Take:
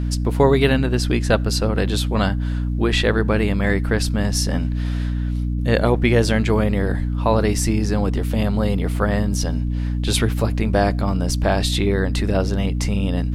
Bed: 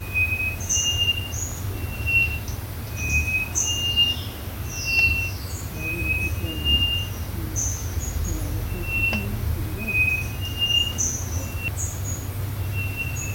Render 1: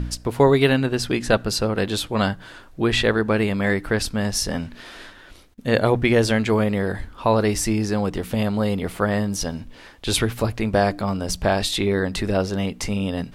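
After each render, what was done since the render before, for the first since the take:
hum removal 60 Hz, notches 5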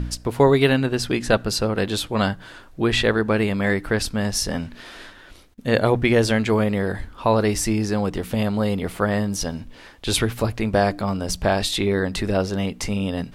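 no processing that can be heard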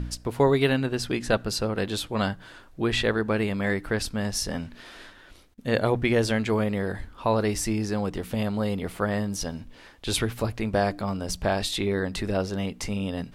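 level −5 dB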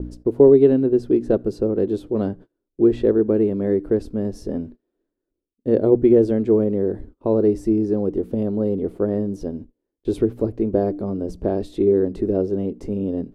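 noise gate −39 dBFS, range −32 dB
drawn EQ curve 160 Hz 0 dB, 370 Hz +14 dB, 810 Hz −7 dB, 2,200 Hz −19 dB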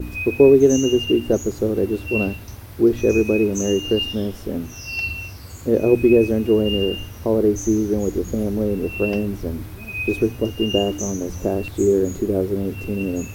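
mix in bed −6.5 dB

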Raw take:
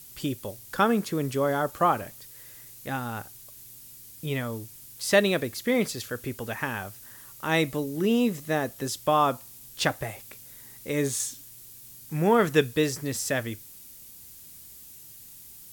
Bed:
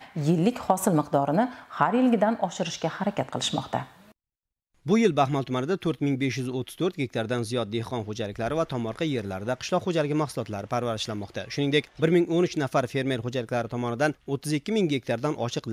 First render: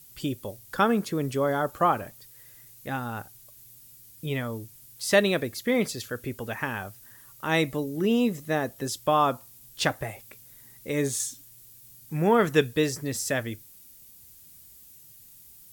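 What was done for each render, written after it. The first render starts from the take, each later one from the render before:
broadband denoise 6 dB, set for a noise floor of −48 dBFS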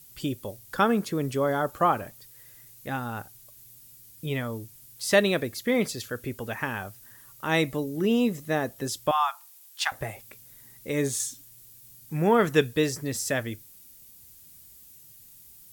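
0:09.11–0:09.92: elliptic high-pass filter 790 Hz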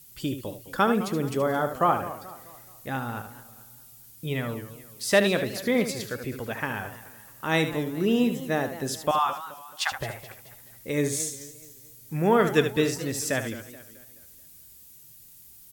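single-tap delay 75 ms −9.5 dB
feedback echo with a swinging delay time 215 ms, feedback 43%, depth 168 cents, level −15 dB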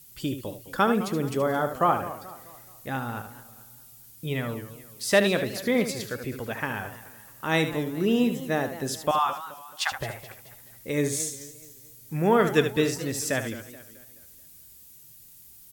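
no processing that can be heard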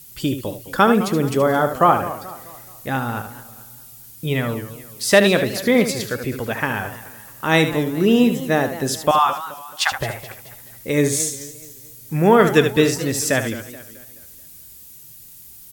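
level +8 dB
brickwall limiter −2 dBFS, peak gain reduction 2 dB

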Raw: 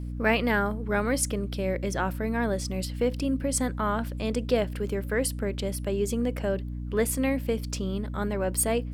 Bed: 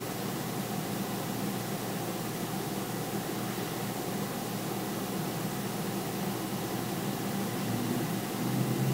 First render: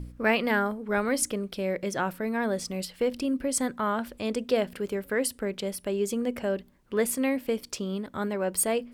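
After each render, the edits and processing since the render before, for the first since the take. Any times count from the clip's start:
hum removal 60 Hz, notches 5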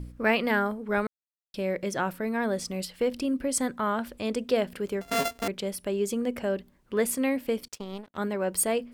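0:01.07–0:01.54: silence
0:05.01–0:05.48: samples sorted by size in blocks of 64 samples
0:07.68–0:08.18: power curve on the samples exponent 2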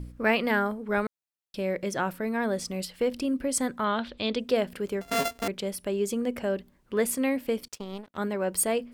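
0:03.84–0:04.40: low-pass with resonance 3,800 Hz, resonance Q 4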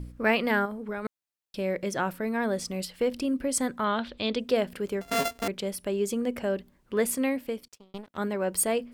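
0:00.65–0:01.05: downward compressor 5 to 1, threshold −30 dBFS
0:07.22–0:07.94: fade out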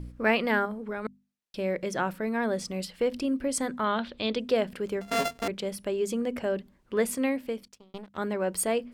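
high-shelf EQ 10,000 Hz −8.5 dB
mains-hum notches 50/100/150/200/250 Hz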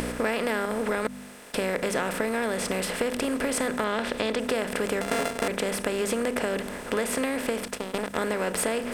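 compressor on every frequency bin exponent 0.4
downward compressor, threshold −23 dBFS, peak gain reduction 8 dB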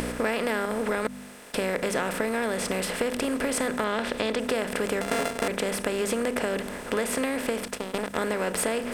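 no processing that can be heard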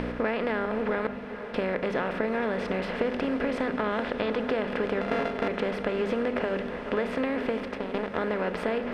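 high-frequency loss of the air 300 metres
on a send: feedback delay with all-pass diffusion 455 ms, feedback 68%, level −11.5 dB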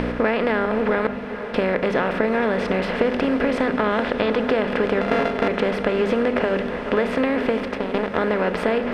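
level +7.5 dB

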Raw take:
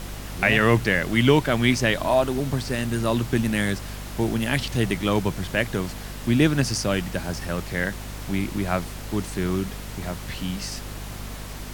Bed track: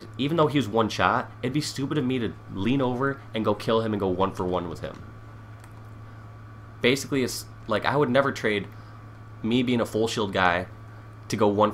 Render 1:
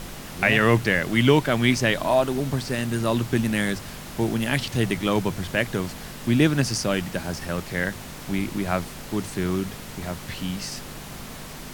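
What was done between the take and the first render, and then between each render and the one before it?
mains-hum notches 50/100 Hz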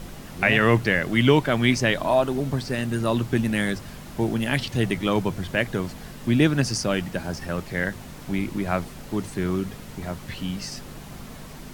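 broadband denoise 6 dB, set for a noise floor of −38 dBFS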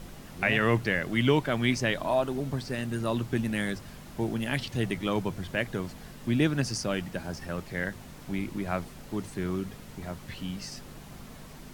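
level −6 dB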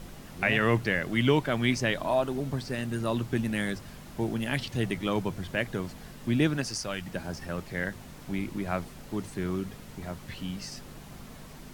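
0:06.56–0:07.05: parametric band 70 Hz → 460 Hz −8.5 dB 2.5 octaves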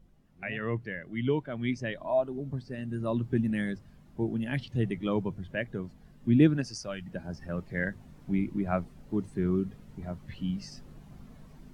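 speech leveller within 5 dB 2 s
every bin expanded away from the loudest bin 1.5 to 1

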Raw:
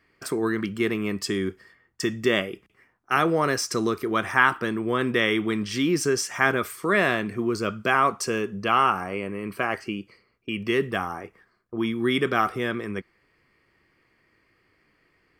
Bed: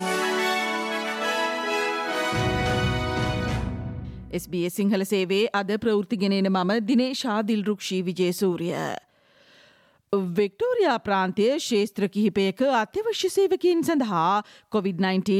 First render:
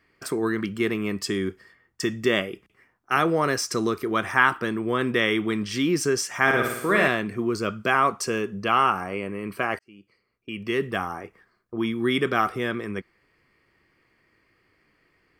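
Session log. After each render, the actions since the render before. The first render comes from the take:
0:06.42–0:07.08: flutter between parallel walls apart 9.7 metres, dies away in 0.8 s
0:09.79–0:11.00: fade in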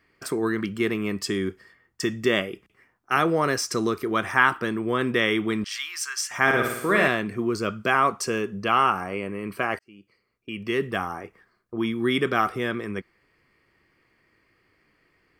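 0:05.64–0:06.31: inverse Chebyshev high-pass filter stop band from 530 Hz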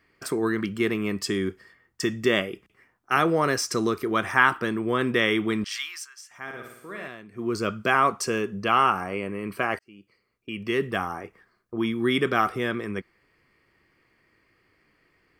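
0:05.77–0:07.63: duck −17 dB, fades 0.31 s equal-power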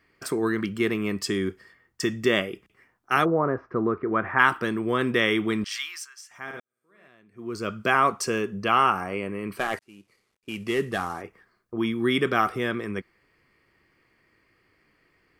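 0:03.24–0:04.38: low-pass filter 1,100 Hz → 2,100 Hz 24 dB per octave
0:06.60–0:07.87: fade in quadratic
0:09.57–0:11.22: variable-slope delta modulation 64 kbit/s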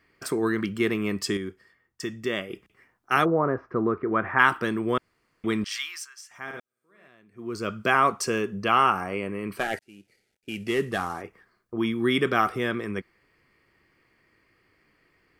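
0:01.37–0:02.50: clip gain −6.5 dB
0:04.98–0:05.44: fill with room tone
0:09.63–0:10.68: Butterworth band-reject 1,100 Hz, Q 2.2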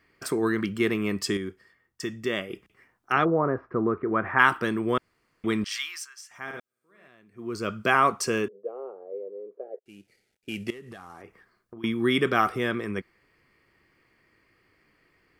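0:03.12–0:04.26: high-frequency loss of the air 210 metres
0:08.48–0:09.86: flat-topped band-pass 480 Hz, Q 3.3
0:10.70–0:11.84: downward compressor 12 to 1, threshold −39 dBFS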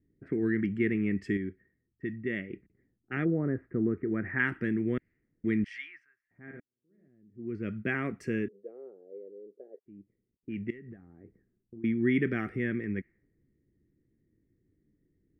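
low-pass that shuts in the quiet parts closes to 450 Hz, open at −24 dBFS
drawn EQ curve 290 Hz 0 dB, 1,100 Hz −27 dB, 1,900 Hz −1 dB, 3,800 Hz −25 dB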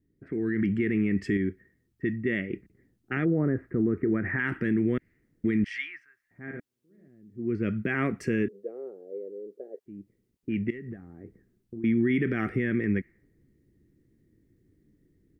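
brickwall limiter −24.5 dBFS, peak gain reduction 10.5 dB
automatic gain control gain up to 7.5 dB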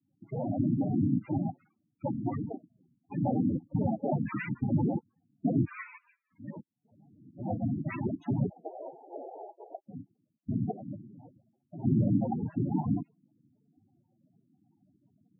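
cochlear-implant simulation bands 4
spectral peaks only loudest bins 8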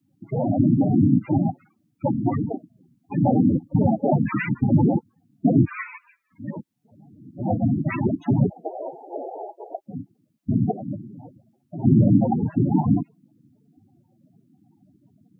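level +10 dB

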